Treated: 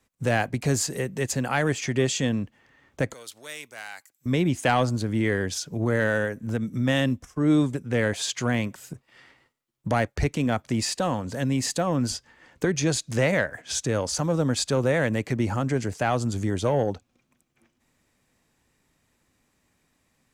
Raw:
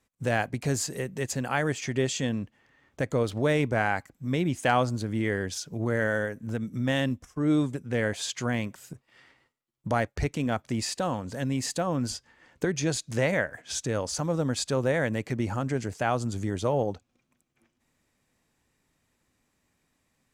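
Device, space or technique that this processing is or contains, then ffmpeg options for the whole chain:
one-band saturation: -filter_complex "[0:a]acrossover=split=300|2000[a][b][c];[b]asoftclip=type=tanh:threshold=-20.5dB[d];[a][d][c]amix=inputs=3:normalize=0,asettb=1/sr,asplit=3[e][f][g];[e]atrim=end=3.134[h];[f]atrim=start=3.13:end=4.26,asetpts=PTS-STARTPTS,afade=t=in:d=0.004:c=qsin,afade=t=out:st=1.126:d=0.004:c=qsin,aderivative[i];[g]atrim=start=4.256[j];[h][i]acrossfade=d=0.004:c1=hsin:c2=qsin[k];[k][j]acrossfade=d=0.004:c1=qsin:c2=hsin,volume=4dB"

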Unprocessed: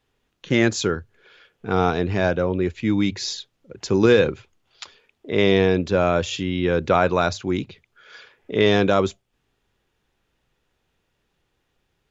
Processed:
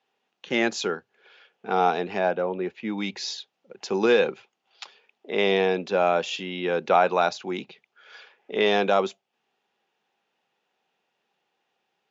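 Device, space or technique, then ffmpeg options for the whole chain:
television speaker: -filter_complex "[0:a]asettb=1/sr,asplit=3[a][b][c];[a]atrim=end=2.194[d];[b]atrim=start=2.19:end=2.98,asetpts=PTS-STARTPTS,afade=t=in:d=0.004:c=qsin,afade=t=out:st=0.786:d=0.004:c=qsin,aemphasis=mode=reproduction:type=75kf[e];[c]atrim=start=2.976[f];[d][e]acrossfade=d=0.004:c1=hsin:c2=qsin[g];[g][f]acrossfade=d=0.004:c1=qsin:c2=hsin,highpass=f=210:w=0.5412,highpass=f=210:w=1.3066,equalizer=f=290:t=q:w=4:g=-9,equalizer=f=790:t=q:w=4:g=9,equalizer=f=2.7k:t=q:w=4:g=4,lowpass=f=6.6k:w=0.5412,lowpass=f=6.6k:w=1.3066,volume=-3.5dB"

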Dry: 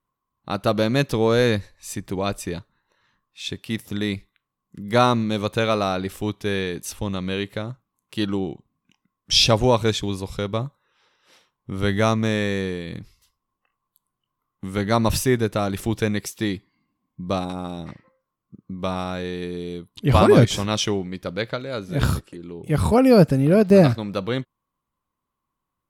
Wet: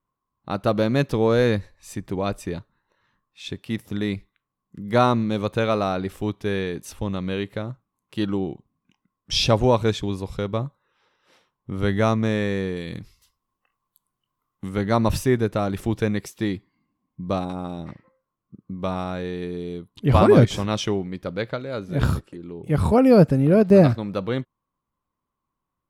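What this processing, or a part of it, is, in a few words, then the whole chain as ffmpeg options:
behind a face mask: -filter_complex "[0:a]highshelf=f=2.5k:g=-8,asettb=1/sr,asplit=3[a][b][c];[a]atrim=end=12.764[d];[b]atrim=start=12.76:end=14.69,asetpts=PTS-STARTPTS,afade=t=in:d=0.004:c=qsin,afade=t=out:st=1.926:d=0.004:c=qsin,highshelf=f=2.6k:g=9[e];[c]atrim=start=14.686[f];[d][e]acrossfade=d=0.004:c1=hsin:c2=qsin[g];[g][f]acrossfade=d=0.004:c1=qsin:c2=hsin"

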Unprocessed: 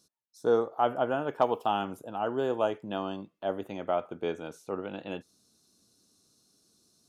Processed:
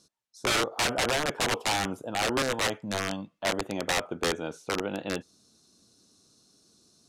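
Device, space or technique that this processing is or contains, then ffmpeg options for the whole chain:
overflowing digital effects unit: -filter_complex "[0:a]asettb=1/sr,asplit=3[a][b][c];[a]atrim=end=2.424[d];[b]atrim=start=2.42:end=3.49,asetpts=PTS-STARTPTS,afade=t=in:d=0.004:c=qsin,afade=t=out:st=1.066:d=0.004:c=qsin,equalizer=f=380:w=3.8:g=-14.5[e];[c]atrim=start=3.486[f];[d][e]acrossfade=d=0.004:c1=hsin:c2=qsin[g];[g][f]acrossfade=d=0.004:c1=qsin:c2=hsin,aeval=exprs='(mod(17.8*val(0)+1,2)-1)/17.8':c=same,lowpass=8.9k,volume=5.5dB"

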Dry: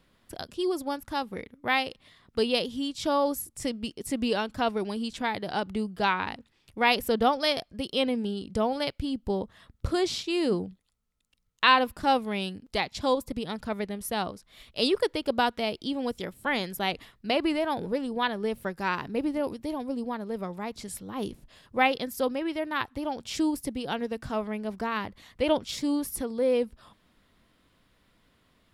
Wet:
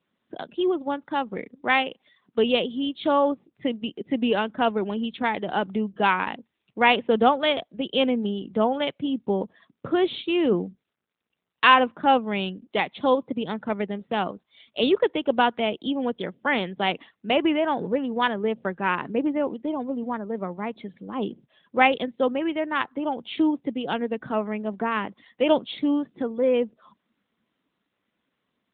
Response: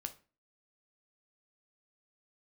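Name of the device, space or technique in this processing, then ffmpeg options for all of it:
mobile call with aggressive noise cancelling: -af "highpass=f=160:w=0.5412,highpass=f=160:w=1.3066,afftdn=nr=14:nf=-50,volume=5dB" -ar 8000 -c:a libopencore_amrnb -b:a 12200

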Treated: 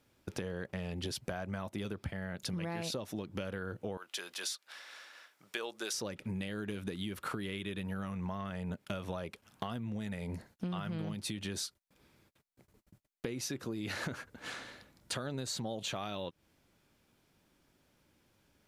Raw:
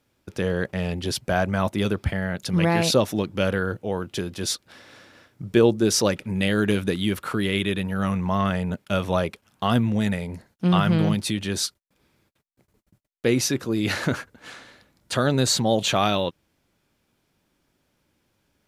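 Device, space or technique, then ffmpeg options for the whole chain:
serial compression, peaks first: -filter_complex "[0:a]asettb=1/sr,asplit=3[a][b][c];[a]atrim=end=3.974[d];[b]atrim=start=3.97:end=5.94,asetpts=PTS-STARTPTS,afade=t=in:d=0.004:c=qsin,afade=t=out:st=1.966:d=0.004:c=qsin,highpass=970[e];[c]atrim=start=5.936[f];[d][e]acrossfade=d=0.004:c1=hsin:c2=qsin[g];[g][f]acrossfade=d=0.004:c1=qsin:c2=hsin,acompressor=threshold=-29dB:ratio=6,acompressor=threshold=-36dB:ratio=2.5,volume=-1dB"

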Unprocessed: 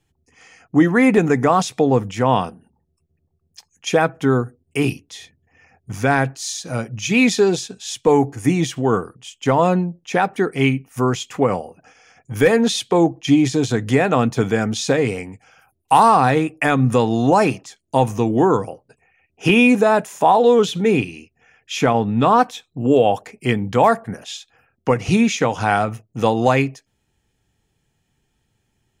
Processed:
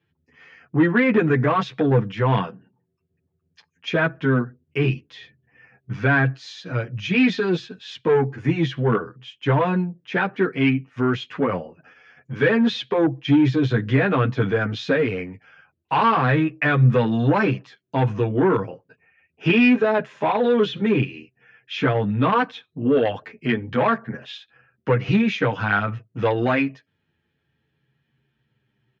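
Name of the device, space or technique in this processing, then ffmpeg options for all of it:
barber-pole flanger into a guitar amplifier: -filter_complex "[0:a]asplit=2[a][b];[b]adelay=8.9,afreqshift=-0.26[c];[a][c]amix=inputs=2:normalize=1,asoftclip=type=tanh:threshold=-11.5dB,highpass=110,equalizer=f=130:t=q:w=4:g=6,equalizer=f=760:t=q:w=4:g=-8,equalizer=f=1.6k:t=q:w=4:g=6,lowpass=f=3.7k:w=0.5412,lowpass=f=3.7k:w=1.3066,volume=1.5dB"

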